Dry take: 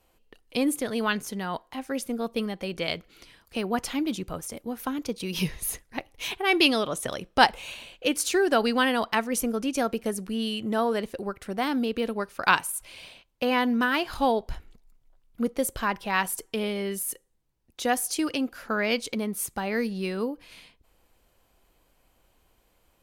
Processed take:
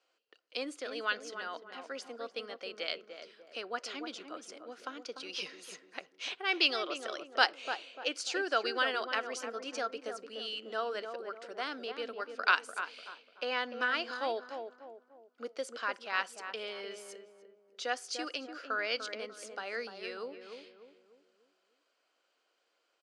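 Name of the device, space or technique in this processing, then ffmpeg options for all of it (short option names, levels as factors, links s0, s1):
phone speaker on a table: -filter_complex "[0:a]lowpass=12000,highpass=f=370:w=0.5412,highpass=f=370:w=1.3066,equalizer=f=390:t=q:w=4:g=-3,equalizer=f=890:t=q:w=4:g=-7,equalizer=f=1400:t=q:w=4:g=7,equalizer=f=2900:t=q:w=4:g=3,equalizer=f=4700:t=q:w=4:g=7,lowpass=f=7200:w=0.5412,lowpass=f=7200:w=1.3066,asplit=2[s0][s1];[s1]adelay=296,lowpass=f=1000:p=1,volume=0.501,asplit=2[s2][s3];[s3]adelay=296,lowpass=f=1000:p=1,volume=0.45,asplit=2[s4][s5];[s5]adelay=296,lowpass=f=1000:p=1,volume=0.45,asplit=2[s6][s7];[s7]adelay=296,lowpass=f=1000:p=1,volume=0.45,asplit=2[s8][s9];[s9]adelay=296,lowpass=f=1000:p=1,volume=0.45[s10];[s0][s2][s4][s6][s8][s10]amix=inputs=6:normalize=0,volume=0.376"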